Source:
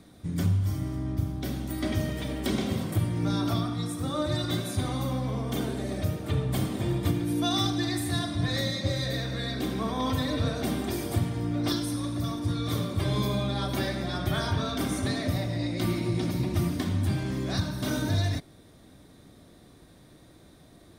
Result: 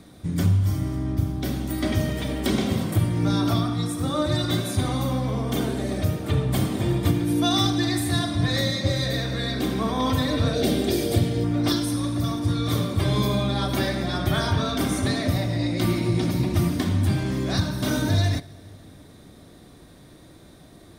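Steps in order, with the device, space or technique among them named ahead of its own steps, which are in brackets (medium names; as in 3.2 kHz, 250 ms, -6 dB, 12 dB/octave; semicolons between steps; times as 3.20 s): compressed reverb return (on a send at -12 dB: reverberation RT60 1.5 s, pre-delay 28 ms + compression, threshold -35 dBFS, peak gain reduction 13 dB); 10.53–11.44 s: on the sum: graphic EQ 500/1000/4000 Hz +9/-10/+6 dB; trim +5 dB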